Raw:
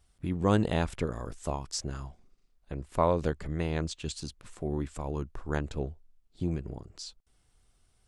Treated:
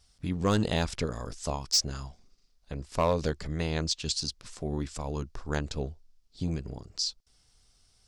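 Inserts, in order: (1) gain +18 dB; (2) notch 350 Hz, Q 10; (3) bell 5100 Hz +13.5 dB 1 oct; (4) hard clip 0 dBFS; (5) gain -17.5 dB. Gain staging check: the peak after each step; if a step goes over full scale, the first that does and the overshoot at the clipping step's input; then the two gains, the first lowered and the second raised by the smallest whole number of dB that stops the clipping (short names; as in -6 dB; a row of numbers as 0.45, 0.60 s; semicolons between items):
+7.0, +7.0, +8.0, 0.0, -17.5 dBFS; step 1, 8.0 dB; step 1 +10 dB, step 5 -9.5 dB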